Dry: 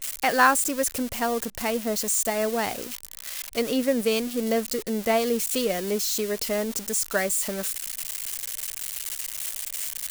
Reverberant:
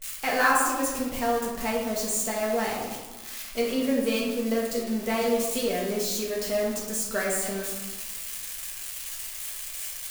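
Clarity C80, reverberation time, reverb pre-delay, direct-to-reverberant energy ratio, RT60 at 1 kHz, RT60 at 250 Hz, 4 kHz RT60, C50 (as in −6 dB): 4.5 dB, 1.2 s, 4 ms, −5.0 dB, 1.3 s, 1.4 s, 0.70 s, 2.5 dB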